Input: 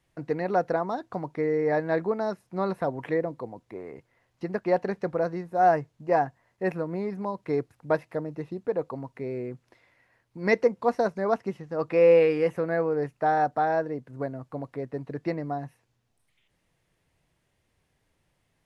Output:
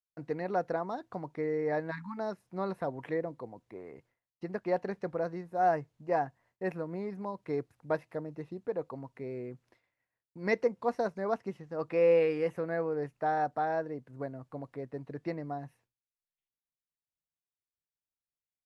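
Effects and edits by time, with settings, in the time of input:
1.91–2.18 s: spectral selection erased 300–840 Hz
whole clip: expander -54 dBFS; trim -6.5 dB

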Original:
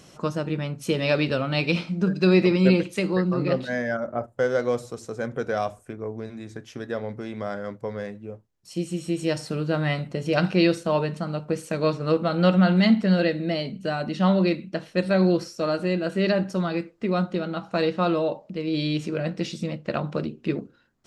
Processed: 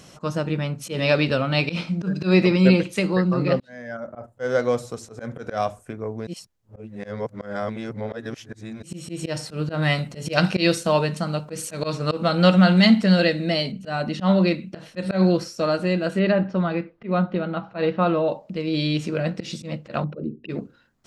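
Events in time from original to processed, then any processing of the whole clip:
3.60–4.57 s: fade in
6.27–8.83 s: reverse
9.82–13.72 s: treble shelf 3.8 kHz +9.5 dB
16.19–18.28 s: Bessel low-pass 2.6 kHz, order 4
20.04–20.49 s: resonances exaggerated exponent 2
whole clip: peaking EQ 360 Hz -3.5 dB 0.55 oct; slow attack 107 ms; trim +3.5 dB

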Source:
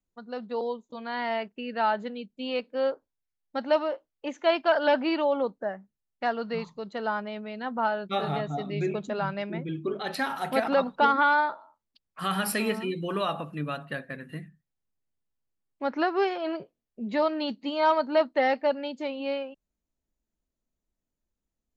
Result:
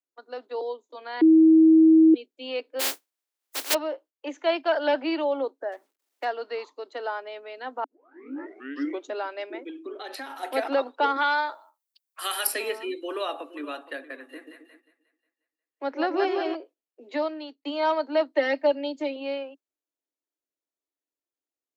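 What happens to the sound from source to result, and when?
1.21–2.14 s: bleep 320 Hz -11.5 dBFS
2.79–3.73 s: spectral contrast reduction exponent 0.11
5.72–6.25 s: companding laws mixed up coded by mu
7.84 s: tape start 1.26 s
9.69–10.43 s: compression 3:1, threshold -34 dBFS
11.16–12.47 s: RIAA curve recording
12.97–13.62 s: echo throw 470 ms, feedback 15%, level -15.5 dB
14.17–16.55 s: two-band feedback delay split 570 Hz, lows 131 ms, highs 179 ms, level -4 dB
17.12–17.65 s: fade out
18.35–19.16 s: comb 3.2 ms, depth 77%
whole clip: gate -50 dBFS, range -6 dB; steep high-pass 270 Hz 96 dB/octave; dynamic bell 1.2 kHz, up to -4 dB, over -41 dBFS, Q 1.8

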